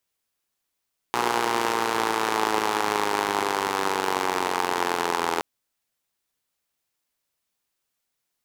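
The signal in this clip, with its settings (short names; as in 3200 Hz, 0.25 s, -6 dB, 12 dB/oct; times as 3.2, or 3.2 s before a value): four-cylinder engine model, changing speed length 4.27 s, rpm 3600, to 2500, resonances 420/860 Hz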